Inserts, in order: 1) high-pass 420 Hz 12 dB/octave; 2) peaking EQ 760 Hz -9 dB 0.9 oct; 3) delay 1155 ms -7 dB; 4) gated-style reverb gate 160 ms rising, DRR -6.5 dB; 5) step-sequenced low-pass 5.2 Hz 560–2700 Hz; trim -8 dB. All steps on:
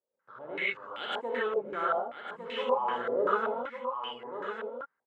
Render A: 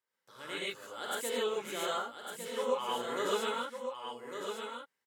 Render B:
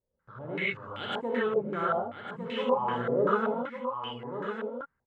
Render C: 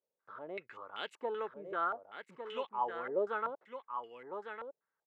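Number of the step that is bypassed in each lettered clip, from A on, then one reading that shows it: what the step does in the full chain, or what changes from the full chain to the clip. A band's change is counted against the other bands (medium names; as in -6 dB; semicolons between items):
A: 5, 4 kHz band +7.0 dB; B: 1, 250 Hz band +9.5 dB; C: 4, momentary loudness spread change +2 LU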